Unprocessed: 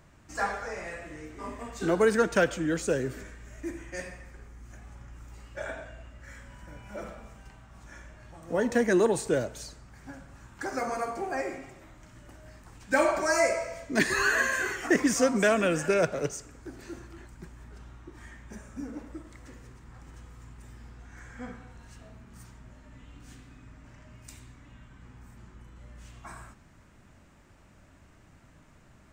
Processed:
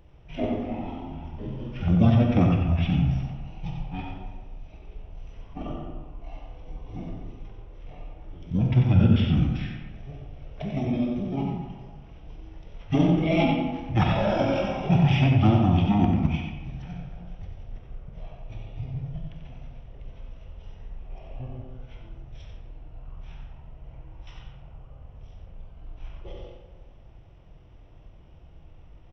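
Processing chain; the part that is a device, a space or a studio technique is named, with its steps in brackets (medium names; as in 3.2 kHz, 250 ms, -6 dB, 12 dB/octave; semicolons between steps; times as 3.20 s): monster voice (pitch shift -11.5 st; formant shift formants -5 st; bass shelf 160 Hz +7 dB; delay 91 ms -7 dB; reverberation RT60 1.4 s, pre-delay 27 ms, DRR 3.5 dB)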